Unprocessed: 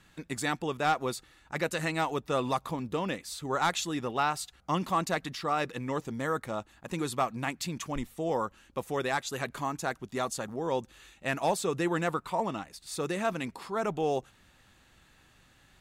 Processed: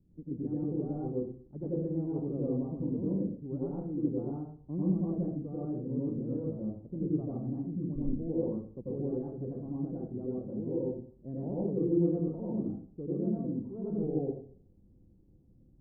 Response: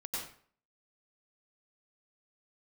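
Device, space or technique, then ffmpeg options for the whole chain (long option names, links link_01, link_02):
next room: -filter_complex "[0:a]lowpass=frequency=380:width=0.5412,lowpass=frequency=380:width=1.3066[link_01];[1:a]atrim=start_sample=2205[link_02];[link_01][link_02]afir=irnorm=-1:irlink=0,volume=2.5dB"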